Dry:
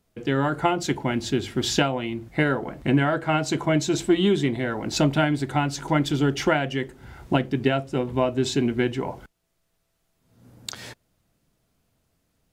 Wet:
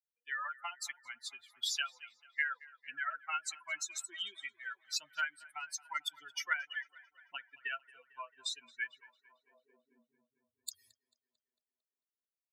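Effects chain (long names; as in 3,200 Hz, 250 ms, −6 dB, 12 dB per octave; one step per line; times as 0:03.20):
spectral dynamics exaggerated over time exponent 3
guitar amp tone stack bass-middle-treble 5-5-5
downward compressor 2.5 to 1, threshold −46 dBFS, peak gain reduction 8.5 dB
tape delay 223 ms, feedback 72%, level −20 dB, low-pass 3,200 Hz
high-pass filter sweep 1,500 Hz → 91 Hz, 0:09.15–0:10.40
level +9 dB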